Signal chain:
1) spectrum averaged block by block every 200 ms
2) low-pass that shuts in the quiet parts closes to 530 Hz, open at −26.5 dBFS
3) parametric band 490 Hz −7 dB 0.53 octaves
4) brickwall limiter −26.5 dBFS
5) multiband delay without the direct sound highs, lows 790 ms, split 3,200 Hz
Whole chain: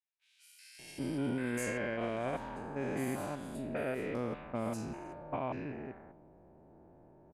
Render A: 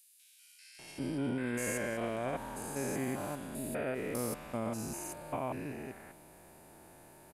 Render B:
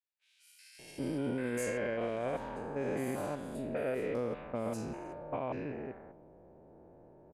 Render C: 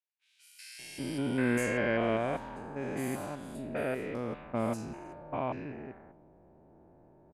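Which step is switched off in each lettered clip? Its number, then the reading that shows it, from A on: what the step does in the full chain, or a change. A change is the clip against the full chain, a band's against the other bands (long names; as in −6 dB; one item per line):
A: 2, 8 kHz band +7.5 dB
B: 3, 500 Hz band +3.5 dB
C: 4, change in crest factor +4.0 dB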